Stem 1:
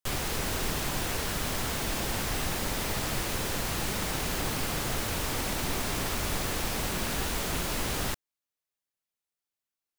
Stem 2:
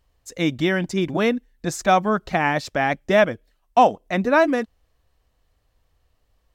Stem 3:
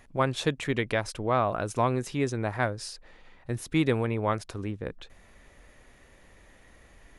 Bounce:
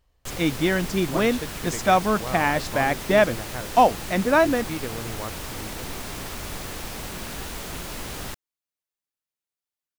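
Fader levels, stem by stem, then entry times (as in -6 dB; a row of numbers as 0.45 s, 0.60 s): -3.0 dB, -1.5 dB, -8.0 dB; 0.20 s, 0.00 s, 0.95 s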